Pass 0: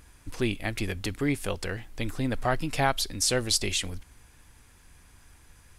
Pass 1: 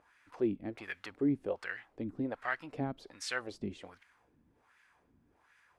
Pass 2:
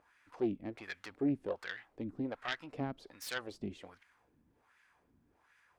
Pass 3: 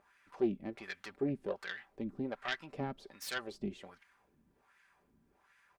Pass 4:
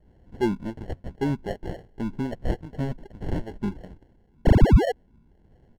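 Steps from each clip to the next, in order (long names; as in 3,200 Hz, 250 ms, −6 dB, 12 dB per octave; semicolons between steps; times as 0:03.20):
LFO wah 1.3 Hz 220–1,900 Hz, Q 2.1
phase distortion by the signal itself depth 0.18 ms; level −2 dB
comb filter 5.1 ms, depth 45%
sound drawn into the spectrogram fall, 0:04.45–0:04.92, 430–7,200 Hz −28 dBFS; decimation without filtering 36×; RIAA equalisation playback; level +3.5 dB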